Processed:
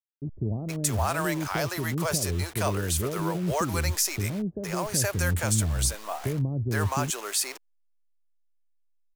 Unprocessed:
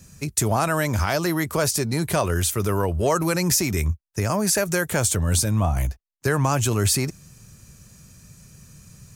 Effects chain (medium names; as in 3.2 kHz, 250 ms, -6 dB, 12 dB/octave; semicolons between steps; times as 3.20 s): send-on-delta sampling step -32 dBFS; bands offset in time lows, highs 470 ms, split 450 Hz; trim -4.5 dB